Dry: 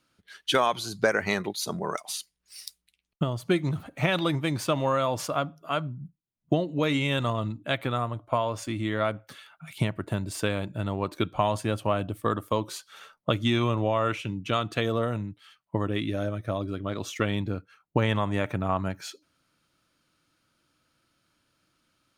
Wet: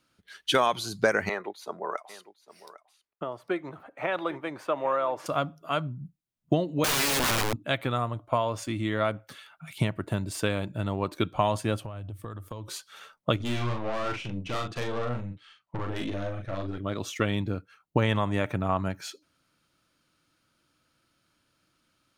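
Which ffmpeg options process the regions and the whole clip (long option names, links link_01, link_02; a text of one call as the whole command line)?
ffmpeg -i in.wav -filter_complex "[0:a]asettb=1/sr,asplit=3[link_01][link_02][link_03];[link_01]atrim=end=1.294[link_04];[link_02]atrim=start=1.29:end=5.26,asetpts=PTS-STARTPTS,afade=type=in:duration=0.004:curve=qsin,afade=type=out:start_time=3.966:duration=0.004:curve=qsin,acrossover=split=350 2100:gain=0.0794 1 0.126[link_05][link_06][link_07];[link_05][link_06][link_07]amix=inputs=3:normalize=0,aecho=1:1:803:0.141,atrim=end_sample=175077[link_08];[link_03]atrim=start=5.256[link_09];[link_04][link_08]acrossfade=duration=0.004:curve1=hsin:curve2=qsin[link_10];[link_10][link_09]acrossfade=duration=0.004:curve1=qsin:curve2=hsin,asettb=1/sr,asplit=3[link_11][link_12][link_13];[link_11]atrim=end=6.844[link_14];[link_12]atrim=start=6.84:end=7.56,asetpts=PTS-STARTPTS,afade=type=in:duration=0.004:curve=qsin,afade=type=out:start_time=0.716:duration=0.004:curve=qsin,equalizer=frequency=4100:width=6.5:gain=-11.5,acontrast=54,aeval=exprs='(mod(11.2*val(0)+1,2)-1)/11.2':channel_layout=same[link_15];[link_13]atrim=start=7.556[link_16];[link_14][link_15]acrossfade=duration=0.004:curve1=hsin:curve2=qsin[link_17];[link_17][link_16]acrossfade=duration=0.004:curve1=qsin:curve2=hsin,asettb=1/sr,asplit=3[link_18][link_19][link_20];[link_18]atrim=end=11.834[link_21];[link_19]atrim=start=11.83:end=12.68,asetpts=PTS-STARTPTS,afade=type=in:duration=0.004:curve=qsin,afade=type=out:start_time=0.846:duration=0.004:curve=qsin,equalizer=frequency=97:width=2.5:gain=13,acompressor=threshold=-34dB:ratio=16:attack=3.2:release=140:knee=1:detection=peak[link_22];[link_20]atrim=start=12.676[link_23];[link_21][link_22]acrossfade=duration=0.004:curve1=hsin:curve2=qsin[link_24];[link_24][link_23]acrossfade=duration=0.004:curve1=qsin:curve2=hsin,asettb=1/sr,asplit=3[link_25][link_26][link_27];[link_25]atrim=end=13.364[link_28];[link_26]atrim=start=13.36:end=16.78,asetpts=PTS-STARTPTS,afade=type=in:duration=0.004:curve=qsin,afade=type=out:start_time=3.416:duration=0.004:curve=qsin,lowpass=6000,aeval=exprs='(tanh(25.1*val(0)+0.45)-tanh(0.45))/25.1':channel_layout=same,asplit=2[link_29][link_30];[link_30]adelay=41,volume=-4dB[link_31];[link_29][link_31]amix=inputs=2:normalize=0,atrim=end_sample=150822[link_32];[link_27]atrim=start=16.776[link_33];[link_28][link_32]acrossfade=duration=0.004:curve1=hsin:curve2=qsin[link_34];[link_34][link_33]acrossfade=duration=0.004:curve1=qsin:curve2=hsin" out.wav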